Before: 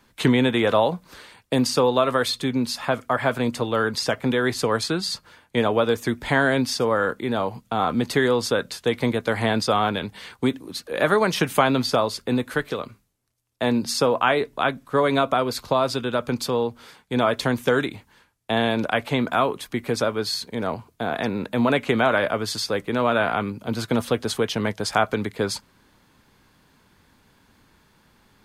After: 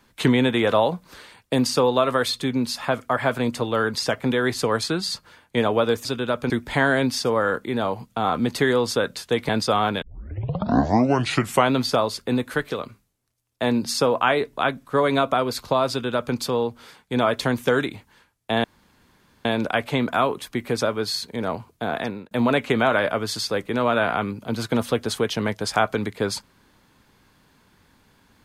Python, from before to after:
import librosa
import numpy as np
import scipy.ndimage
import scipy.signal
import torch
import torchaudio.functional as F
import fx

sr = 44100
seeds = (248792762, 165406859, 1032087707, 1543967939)

y = fx.edit(x, sr, fx.cut(start_s=9.04, length_s=0.45),
    fx.tape_start(start_s=10.02, length_s=1.71),
    fx.duplicate(start_s=15.9, length_s=0.45, to_s=6.05),
    fx.insert_room_tone(at_s=18.64, length_s=0.81),
    fx.fade_out_span(start_s=21.16, length_s=0.34), tone=tone)